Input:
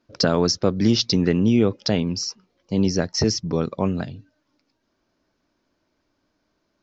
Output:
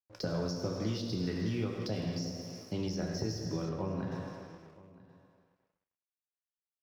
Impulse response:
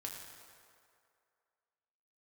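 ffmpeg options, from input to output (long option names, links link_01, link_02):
-filter_complex "[0:a]bandreject=frequency=50:width_type=h:width=6,bandreject=frequency=100:width_type=h:width=6,bandreject=frequency=150:width_type=h:width=6,bandreject=frequency=200:width_type=h:width=6,bandreject=frequency=250:width_type=h:width=6[link_01];[1:a]atrim=start_sample=2205,asetrate=48510,aresample=44100[link_02];[link_01][link_02]afir=irnorm=-1:irlink=0,acrossover=split=150|700[link_03][link_04][link_05];[link_03]acompressor=threshold=-36dB:ratio=4[link_06];[link_04]acompressor=threshold=-34dB:ratio=4[link_07];[link_05]acompressor=threshold=-43dB:ratio=4[link_08];[link_06][link_07][link_08]amix=inputs=3:normalize=0,aeval=exprs='sgn(val(0))*max(abs(val(0))-0.00178,0)':channel_layout=same,asettb=1/sr,asplit=3[link_09][link_10][link_11];[link_09]atrim=end=3.694[link_12];[link_10]atrim=start=3.69:end=4.12,asetpts=PTS-STARTPTS,afade=type=in:duration=0.004:curve=qsin,afade=type=out:start_time=0.426:duration=0.004:curve=qsin,lowpass=frequency=2300:poles=1[link_13];[link_11]atrim=start=4.116[link_14];[link_12][link_13]acrossfade=duration=0.004:curve1=hsin:curve2=qsin[link_15];[link_15][link_14]acrossfade=duration=0.004:curve1=qsin:curve2=hsin,aecho=1:1:972:0.0944,volume=-2dB"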